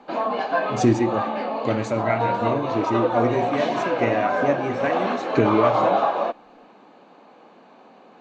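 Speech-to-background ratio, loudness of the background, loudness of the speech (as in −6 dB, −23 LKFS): −1.0 dB, −24.0 LKFS, −25.0 LKFS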